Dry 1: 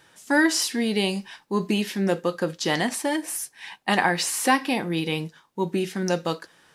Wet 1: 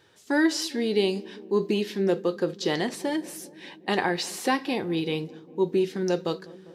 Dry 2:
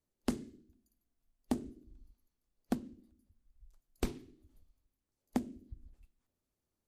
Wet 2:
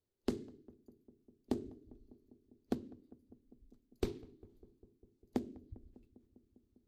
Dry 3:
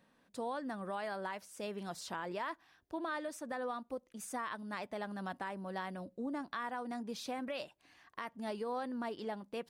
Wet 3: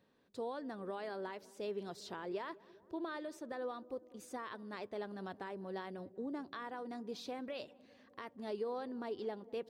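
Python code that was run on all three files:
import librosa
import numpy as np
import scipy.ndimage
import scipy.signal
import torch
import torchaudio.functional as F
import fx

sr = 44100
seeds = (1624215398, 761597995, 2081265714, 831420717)

y = fx.graphic_eq_15(x, sr, hz=(100, 400, 4000, 10000), db=(10, 11, 5, -6))
y = fx.echo_filtered(y, sr, ms=200, feedback_pct=82, hz=940.0, wet_db=-20)
y = y * librosa.db_to_amplitude(-6.5)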